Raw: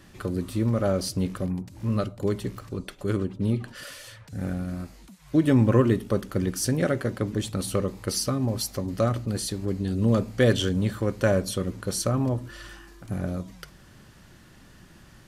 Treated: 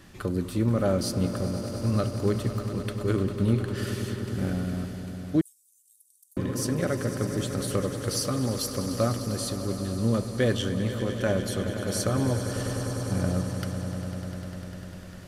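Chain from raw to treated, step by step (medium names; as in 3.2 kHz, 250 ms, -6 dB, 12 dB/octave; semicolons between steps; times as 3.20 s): on a send: echo with a slow build-up 100 ms, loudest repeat 5, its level -14 dB; on the sum: gain riding within 5 dB 2 s; 5.41–6.37 s: inverse Chebyshev high-pass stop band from 1.5 kHz, stop band 80 dB; trim -2.5 dB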